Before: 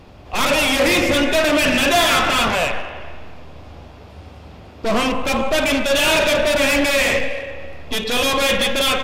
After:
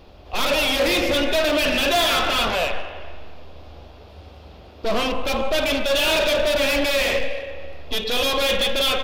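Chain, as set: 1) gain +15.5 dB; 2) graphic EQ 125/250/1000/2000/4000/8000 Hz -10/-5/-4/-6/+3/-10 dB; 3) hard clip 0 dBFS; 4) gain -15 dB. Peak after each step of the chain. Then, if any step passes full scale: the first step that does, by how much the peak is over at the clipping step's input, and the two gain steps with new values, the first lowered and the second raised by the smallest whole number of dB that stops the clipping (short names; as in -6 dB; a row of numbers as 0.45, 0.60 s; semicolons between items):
+5.5, +5.5, 0.0, -15.0 dBFS; step 1, 5.5 dB; step 1 +9.5 dB, step 4 -9 dB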